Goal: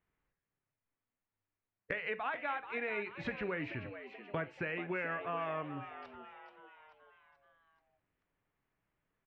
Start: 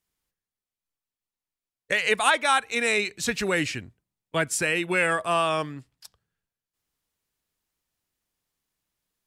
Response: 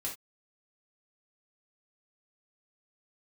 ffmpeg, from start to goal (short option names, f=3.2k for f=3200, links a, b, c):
-filter_complex "[0:a]lowpass=f=2.3k:w=0.5412,lowpass=f=2.3k:w=1.3066,acompressor=threshold=-41dB:ratio=4,asplit=6[a][b][c][d][e][f];[b]adelay=433,afreqshift=100,volume=-11dB[g];[c]adelay=866,afreqshift=200,volume=-16.8dB[h];[d]adelay=1299,afreqshift=300,volume=-22.7dB[i];[e]adelay=1732,afreqshift=400,volume=-28.5dB[j];[f]adelay=2165,afreqshift=500,volume=-34.4dB[k];[a][g][h][i][j][k]amix=inputs=6:normalize=0,asplit=2[l][m];[1:a]atrim=start_sample=2205[n];[m][n]afir=irnorm=-1:irlink=0,volume=-10dB[o];[l][o]amix=inputs=2:normalize=0,volume=1dB"